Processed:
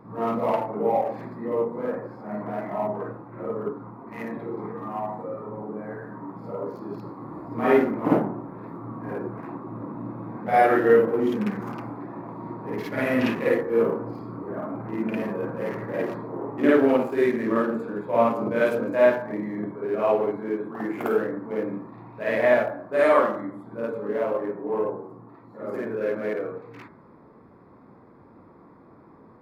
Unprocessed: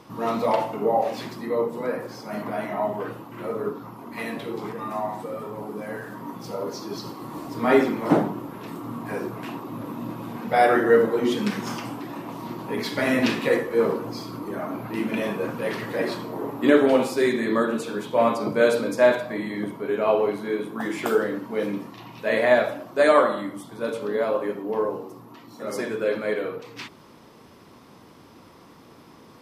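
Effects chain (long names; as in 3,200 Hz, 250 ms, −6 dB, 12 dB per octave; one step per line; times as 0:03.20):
adaptive Wiener filter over 15 samples
flat-topped bell 5,700 Hz −9 dB
hum removal 78.87 Hz, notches 27
backwards echo 52 ms −5.5 dB
level −1.5 dB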